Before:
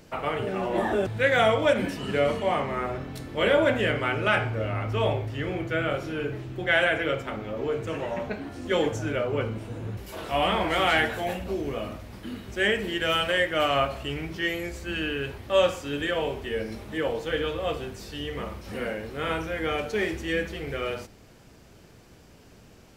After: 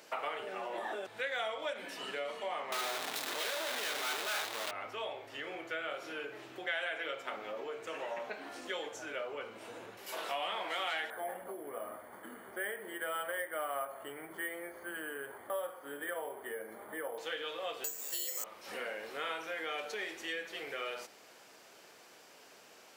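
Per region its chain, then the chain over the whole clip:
2.72–4.71 infinite clipping + HPF 140 Hz + notch 530 Hz, Q 16
11.1–17.18 polynomial smoothing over 41 samples + careless resampling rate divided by 4×, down filtered, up hold
17.84–18.44 HPF 140 Hz 24 dB/oct + frequency shift +60 Hz + careless resampling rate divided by 6×, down filtered, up zero stuff
whole clip: dynamic EQ 3700 Hz, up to +6 dB, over -49 dBFS, Q 4.4; compressor 6:1, threshold -34 dBFS; HPF 600 Hz 12 dB/oct; gain +1 dB

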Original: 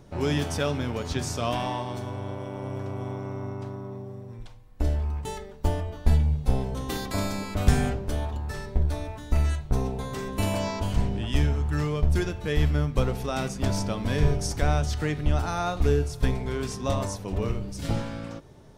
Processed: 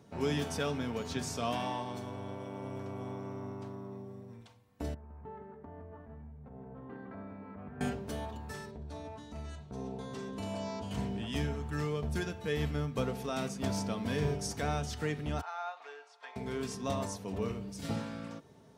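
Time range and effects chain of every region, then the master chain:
4.94–7.81 LPF 1700 Hz 24 dB/oct + compressor 4:1, threshold -37 dBFS + echo 0.164 s -8 dB
8.71–10.91 LPF 6800 Hz + bell 2000 Hz -5 dB 1.2 oct + compressor 2:1, threshold -30 dBFS
15.41–16.36 HPF 780 Hz 24 dB/oct + tape spacing loss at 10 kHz 27 dB
whole clip: HPF 87 Hz 24 dB/oct; comb 4.4 ms, depth 37%; gain -6.5 dB

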